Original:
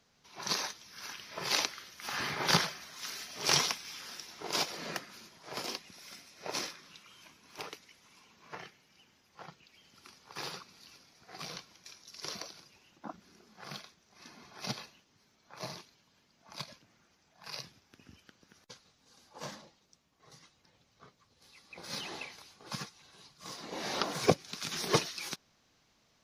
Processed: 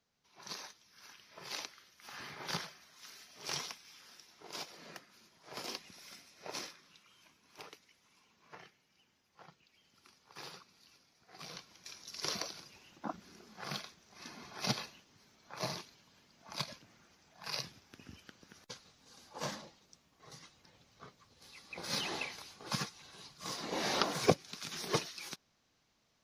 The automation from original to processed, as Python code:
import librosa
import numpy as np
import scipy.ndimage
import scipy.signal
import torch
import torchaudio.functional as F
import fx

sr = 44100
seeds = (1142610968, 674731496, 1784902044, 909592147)

y = fx.gain(x, sr, db=fx.line((5.11, -12.0), (5.85, -1.5), (6.85, -8.0), (11.31, -8.0), (12.01, 3.5), (23.78, 3.5), (24.66, -5.5)))